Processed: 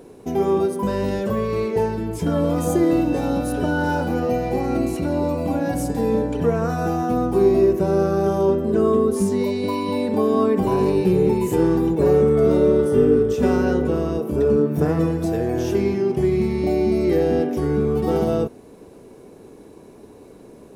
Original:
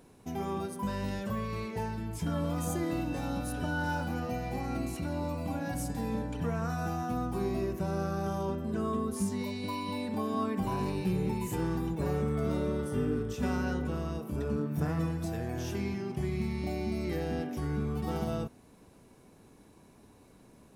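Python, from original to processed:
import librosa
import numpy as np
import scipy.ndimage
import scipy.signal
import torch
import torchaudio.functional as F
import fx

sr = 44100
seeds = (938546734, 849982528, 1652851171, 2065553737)

y = fx.peak_eq(x, sr, hz=420.0, db=12.5, octaves=1.2)
y = F.gain(torch.from_numpy(y), 7.0).numpy()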